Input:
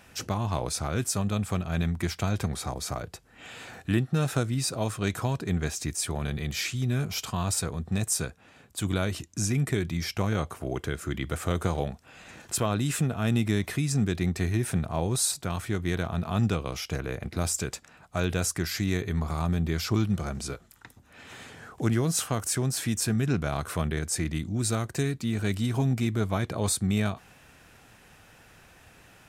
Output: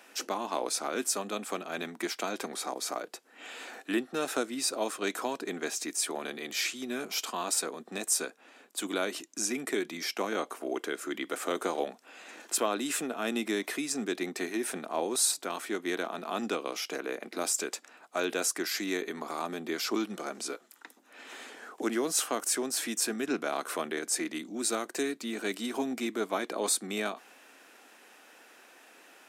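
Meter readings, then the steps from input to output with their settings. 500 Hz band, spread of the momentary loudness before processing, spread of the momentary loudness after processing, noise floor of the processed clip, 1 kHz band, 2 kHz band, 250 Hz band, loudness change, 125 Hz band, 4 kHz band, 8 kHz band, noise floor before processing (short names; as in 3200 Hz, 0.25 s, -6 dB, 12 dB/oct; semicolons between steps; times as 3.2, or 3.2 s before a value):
0.0 dB, 8 LU, 9 LU, -58 dBFS, 0.0 dB, 0.0 dB, -5.5 dB, -3.5 dB, -27.0 dB, 0.0 dB, 0.0 dB, -56 dBFS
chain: steep high-pass 260 Hz 36 dB/oct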